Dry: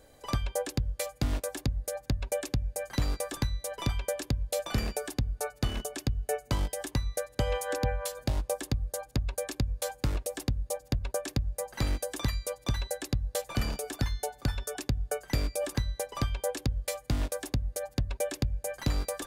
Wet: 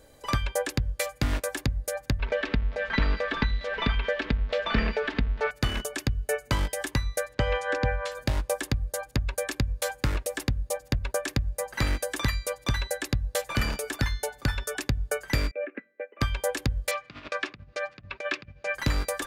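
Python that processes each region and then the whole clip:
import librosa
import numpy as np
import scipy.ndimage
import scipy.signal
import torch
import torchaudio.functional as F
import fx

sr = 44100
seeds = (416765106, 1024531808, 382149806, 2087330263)

y = fx.chain(x, sr, fx.zero_step(step_db=-39.5),
    fx.lowpass(hz=3700.0, slope=24),
    fx.comb(ms=4.5, depth=0.59), at=(2.19, 5.51))
y = fx.chain(y, sr, fx.block_float(bits=7),
    fx.air_absorb(metres=120.0), at=(7.33, 8.12))
y = fx.chain(y, sr, fx.cheby1_bandpass(low_hz=180.0, high_hz=2500.0, order=5),
    fx.fixed_phaser(hz=390.0, stages=4),
    fx.upward_expand(threshold_db=-52.0, expansion=1.5), at=(15.51, 16.21))
y = fx.chain(y, sr, fx.over_compress(threshold_db=-32.0, ratio=-0.5),
    fx.cabinet(low_hz=180.0, low_slope=12, high_hz=4700.0, hz=(260.0, 500.0, 840.0, 1200.0, 2500.0), db=(-7, -7, -6, 6, 7)), at=(16.91, 18.75))
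y = fx.notch(y, sr, hz=730.0, q=12.0)
y = fx.dynamic_eq(y, sr, hz=1800.0, q=0.91, threshold_db=-53.0, ratio=4.0, max_db=8)
y = y * 10.0 ** (2.5 / 20.0)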